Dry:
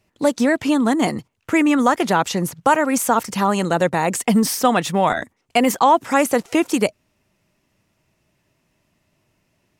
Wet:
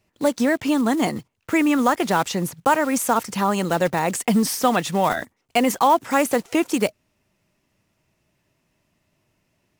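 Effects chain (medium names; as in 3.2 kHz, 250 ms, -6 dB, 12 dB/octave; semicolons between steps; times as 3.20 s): block-companded coder 5-bit; trim -2.5 dB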